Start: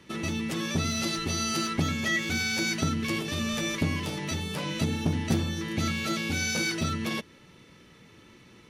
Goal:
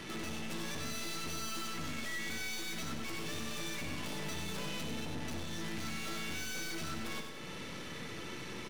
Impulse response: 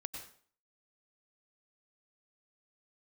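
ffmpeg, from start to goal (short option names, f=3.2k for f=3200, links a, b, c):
-filter_complex "[0:a]lowshelf=f=190:g=-5.5,acompressor=threshold=-44dB:ratio=5,aeval=exprs='(tanh(501*val(0)+0.5)-tanh(0.5))/501':c=same,aecho=1:1:96|192|288|384|480|576:0.447|0.228|0.116|0.0593|0.0302|0.0154,asplit=2[a][b];[1:a]atrim=start_sample=2205,asetrate=88200,aresample=44100,adelay=59[c];[b][c]afir=irnorm=-1:irlink=0,volume=-1.5dB[d];[a][d]amix=inputs=2:normalize=0,volume=13.5dB"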